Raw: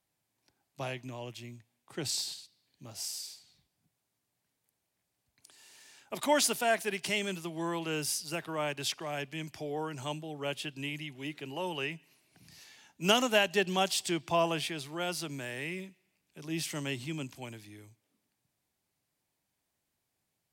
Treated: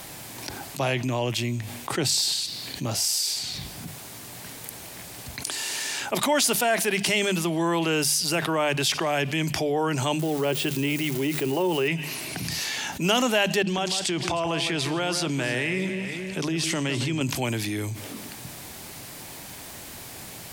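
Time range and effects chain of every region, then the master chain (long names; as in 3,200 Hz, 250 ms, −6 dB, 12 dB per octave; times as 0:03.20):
0:10.19–0:11.88: spike at every zero crossing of −36.5 dBFS + de-essing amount 95% + parametric band 380 Hz +8.5 dB 0.27 octaves
0:13.62–0:17.21: low-pass filter 8,700 Hz + downward compressor, threshold −40 dBFS + delay that swaps between a low-pass and a high-pass 156 ms, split 2,300 Hz, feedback 50%, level −9 dB
whole clip: mains-hum notches 50/100/150/200 Hz; envelope flattener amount 70%; level +2 dB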